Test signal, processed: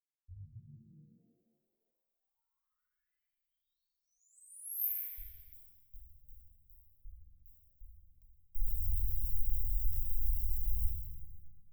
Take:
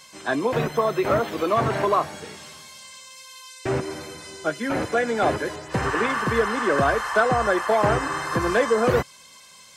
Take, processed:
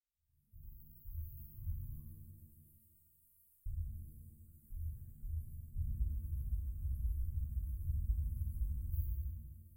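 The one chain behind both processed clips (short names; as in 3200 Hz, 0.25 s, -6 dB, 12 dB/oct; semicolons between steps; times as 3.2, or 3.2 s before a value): opening faded in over 1.72 s; rotary speaker horn 7 Hz; inverse Chebyshev band-stop 300–5400 Hz, stop band 80 dB; shimmer reverb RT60 1.2 s, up +7 st, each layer -8 dB, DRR -7 dB; gain +7.5 dB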